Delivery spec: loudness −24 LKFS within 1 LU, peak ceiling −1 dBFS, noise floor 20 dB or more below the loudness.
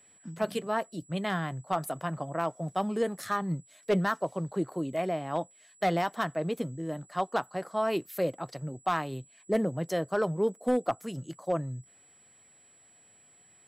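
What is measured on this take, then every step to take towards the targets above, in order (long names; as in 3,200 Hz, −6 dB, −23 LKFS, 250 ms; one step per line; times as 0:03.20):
share of clipped samples 0.2%; peaks flattened at −18.5 dBFS; interfering tone 7,800 Hz; level of the tone −58 dBFS; integrated loudness −31.5 LKFS; sample peak −18.5 dBFS; target loudness −24.0 LKFS
→ clipped peaks rebuilt −18.5 dBFS
notch filter 7,800 Hz, Q 30
level +7.5 dB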